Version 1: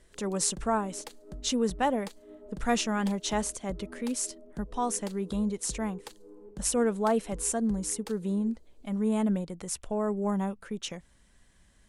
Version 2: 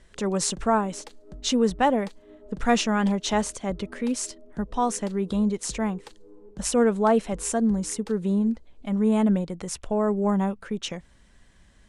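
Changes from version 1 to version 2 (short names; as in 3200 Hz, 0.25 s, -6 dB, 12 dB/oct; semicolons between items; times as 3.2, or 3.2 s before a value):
speech +6.0 dB; master: add air absorption 52 m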